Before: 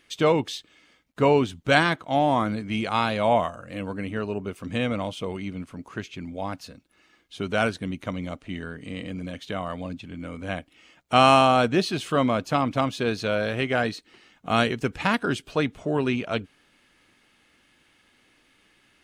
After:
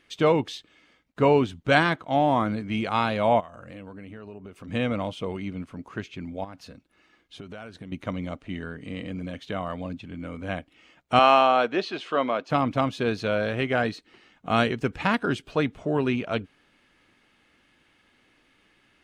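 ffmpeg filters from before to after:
ffmpeg -i in.wav -filter_complex "[0:a]asplit=3[link_01][link_02][link_03];[link_01]afade=type=out:start_time=3.39:duration=0.02[link_04];[link_02]acompressor=threshold=-38dB:ratio=6:attack=3.2:release=140:knee=1:detection=peak,afade=type=in:start_time=3.39:duration=0.02,afade=type=out:start_time=4.67:duration=0.02[link_05];[link_03]afade=type=in:start_time=4.67:duration=0.02[link_06];[link_04][link_05][link_06]amix=inputs=3:normalize=0,asettb=1/sr,asplit=3[link_07][link_08][link_09];[link_07]atrim=end=6.444[link_10];[link_08]atrim=start=6.44:end=7.92,asetpts=PTS-STARTPTS,afade=type=in:duration=0.004:curve=qsin,afade=type=out:start_time=1.476:duration=0.004:curve=qsin,acompressor=threshold=-36dB:ratio=10:attack=3.2:release=140:knee=1:detection=peak[link_11];[link_09]atrim=start=7.916[link_12];[link_10][link_11]acrossfade=duration=0.004:curve1=hsin:curve2=qsin[link_13];[link_13][link_12]acrossfade=duration=0.004:curve1=qsin:curve2=hsin,asettb=1/sr,asplit=3[link_14][link_15][link_16];[link_14]atrim=end=11.194[link_17];[link_15]atrim=start=11.19:end=12.5,asetpts=PTS-STARTPTS,afade=type=in:duration=0.004:curve=qsin,afade=type=out:start_time=1.306:duration=0.004:curve=qsin,highpass=380,lowpass=4700[link_18];[link_16]atrim=start=12.496[link_19];[link_17][link_18]acrossfade=duration=0.004:curve1=hsin:curve2=qsin[link_20];[link_20][link_19]acrossfade=duration=0.004:curve1=qsin:curve2=hsin,highshelf=frequency=5200:gain=-9.5" out.wav

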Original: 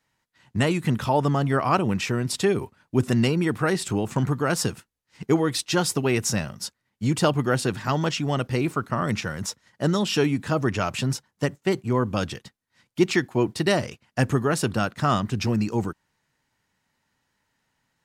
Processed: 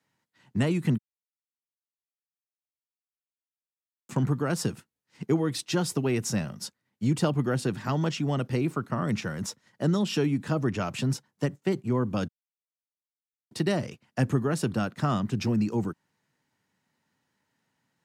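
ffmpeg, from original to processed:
ffmpeg -i in.wav -filter_complex "[0:a]asplit=5[link_01][link_02][link_03][link_04][link_05];[link_01]atrim=end=0.98,asetpts=PTS-STARTPTS,afade=type=out:start_time=0.976:duration=0.004:curve=hsin[link_06];[link_02]atrim=start=0.98:end=4.09,asetpts=PTS-STARTPTS,volume=0[link_07];[link_03]atrim=start=4.09:end=12.28,asetpts=PTS-STARTPTS,afade=type=in:duration=0.004:curve=hsin,afade=type=out:start_time=8.186:duration=0.004:curve=hsin[link_08];[link_04]atrim=start=12.28:end=13.51,asetpts=PTS-STARTPTS,volume=0[link_09];[link_05]atrim=start=13.51,asetpts=PTS-STARTPTS,afade=type=in:duration=0.004:curve=hsin[link_10];[link_06][link_07][link_08][link_09][link_10]concat=n=5:v=0:a=1,highpass=150,lowshelf=frequency=390:gain=8,acrossover=split=190[link_11][link_12];[link_12]acompressor=threshold=-27dB:ratio=1.5[link_13];[link_11][link_13]amix=inputs=2:normalize=0,volume=-4.5dB" out.wav

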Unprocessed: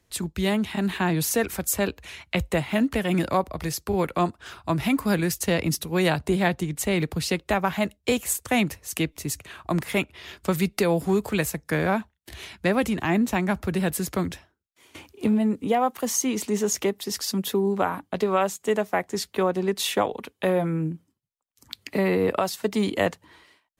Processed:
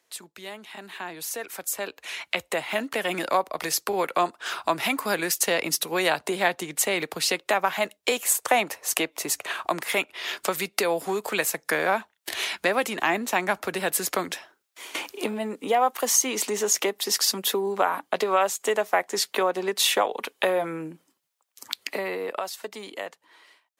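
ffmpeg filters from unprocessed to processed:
ffmpeg -i in.wav -filter_complex "[0:a]asettb=1/sr,asplit=3[link_01][link_02][link_03];[link_01]atrim=end=8.314[link_04];[link_02]atrim=start=8.31:end=9.53,asetpts=PTS-STARTPTS,afade=type=in:duration=0.004:curve=qsin,afade=type=out:start_time=1.216:duration=0.004:curve=qsin,equalizer=frequency=750:width_type=o:width=1.9:gain=7.5[link_05];[link_03]atrim=start=9.526[link_06];[link_04][link_05]acrossfade=duration=0.004:curve1=hsin:curve2=qsin[link_07];[link_07][link_06]acrossfade=duration=0.004:curve1=qsin:curve2=hsin,acompressor=threshold=-42dB:ratio=2,highpass=510,dynaudnorm=framelen=340:gausssize=13:maxgain=14dB,volume=1.5dB" out.wav

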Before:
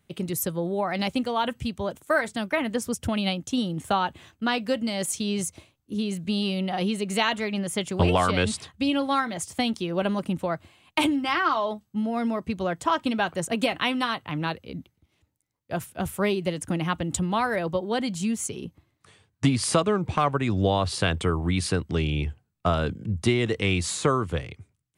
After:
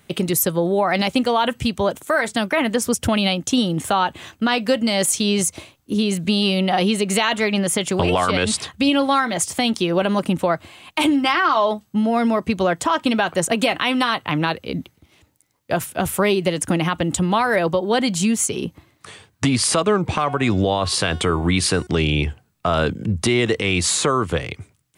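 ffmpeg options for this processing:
ffmpeg -i in.wav -filter_complex "[0:a]asettb=1/sr,asplit=3[link_01][link_02][link_03];[link_01]atrim=end=20.074[link_04];[link_02]atrim=start=20.07:end=21.87,asetpts=PTS-STARTPTS,afade=type=in:duration=0.004:curve=qsin,afade=type=out:start_time=1.796:duration=0.004:curve=qsin,bandreject=frequency=363:width_type=h:width=4,bandreject=frequency=726:width_type=h:width=4,bandreject=frequency=1089:width_type=h:width=4,bandreject=frequency=1452:width_type=h:width=4,bandreject=frequency=1815:width_type=h:width=4,bandreject=frequency=2178:width_type=h:width=4,bandreject=frequency=2541:width_type=h:width=4,bandreject=frequency=2904:width_type=h:width=4,bandreject=frequency=3267:width_type=h:width=4,bandreject=frequency=3630:width_type=h:width=4,bandreject=frequency=3993:width_type=h:width=4,bandreject=frequency=4356:width_type=h:width=4,bandreject=frequency=4719:width_type=h:width=4,bandreject=frequency=5082:width_type=h:width=4,bandreject=frequency=5445:width_type=h:width=4,bandreject=frequency=5808:width_type=h:width=4,bandreject=frequency=6171:width_type=h:width=4,bandreject=frequency=6534:width_type=h:width=4,bandreject=frequency=6897:width_type=h:width=4,bandreject=frequency=7260:width_type=h:width=4,bandreject=frequency=7623:width_type=h:width=4,bandreject=frequency=7986:width_type=h:width=4,bandreject=frequency=8349:width_type=h:width=4,bandreject=frequency=8712:width_type=h:width=4,bandreject=frequency=9075:width_type=h:width=4,bandreject=frequency=9438:width_type=h:width=4,bandreject=frequency=9801:width_type=h:width=4,bandreject=frequency=10164:width_type=h:width=4,bandreject=frequency=10527:width_type=h:width=4,bandreject=frequency=10890:width_type=h:width=4[link_05];[link_03]atrim=start=21.866[link_06];[link_04][link_05]acrossfade=duration=0.004:curve1=hsin:curve2=qsin[link_07];[link_07][link_06]acrossfade=duration=0.004:curve1=qsin:curve2=hsin,lowshelf=frequency=180:gain=-8,acompressor=threshold=-41dB:ratio=1.5,alimiter=level_in=23.5dB:limit=-1dB:release=50:level=0:latency=1,volume=-7.5dB" out.wav

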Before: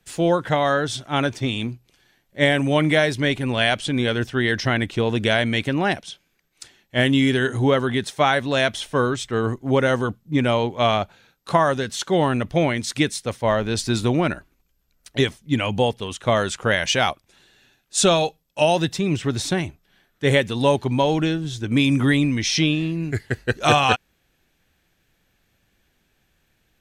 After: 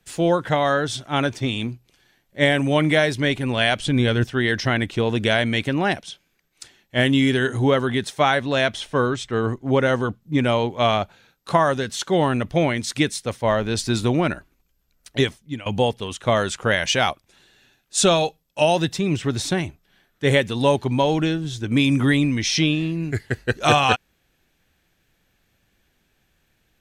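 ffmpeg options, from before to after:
ffmpeg -i in.wav -filter_complex "[0:a]asettb=1/sr,asplit=3[link_01][link_02][link_03];[link_01]atrim=end=3.794[link_04];[link_02]atrim=start=3.79:end=4.24,asetpts=PTS-STARTPTS,afade=type=in:duration=0.004:curve=qsin,afade=type=out:start_time=0.446:duration=0.004:curve=qsin,lowshelf=frequency=130:gain=11[link_05];[link_03]atrim=start=4.236[link_06];[link_04][link_05]acrossfade=duration=0.004:curve1=hsin:curve2=qsin[link_07];[link_07][link_06]acrossfade=duration=0.004:curve1=qsin:curve2=hsin,asettb=1/sr,asplit=3[link_08][link_09][link_10];[link_08]atrim=end=8.364[link_11];[link_09]atrim=start=8.36:end=10.22,asetpts=PTS-STARTPTS,afade=type=in:duration=0.004:curve=qsin,afade=type=out:start_time=1.856:duration=0.004:curve=qsin,highshelf=frequency=9100:gain=-9.5[link_12];[link_10]atrim=start=10.216[link_13];[link_11][link_12]acrossfade=duration=0.004:curve1=hsin:curve2=qsin[link_14];[link_14][link_13]acrossfade=duration=0.004:curve1=qsin:curve2=hsin,asplit=2[link_15][link_16];[link_15]atrim=end=15.66,asetpts=PTS-STARTPTS,afade=type=out:start_time=15.23:duration=0.43:silence=0.112202[link_17];[link_16]atrim=start=15.66,asetpts=PTS-STARTPTS,afade=type=in:duration=0.004:curve=hsin:silence=0.112202[link_18];[link_17][link_18]concat=n=2:v=0:a=1" out.wav

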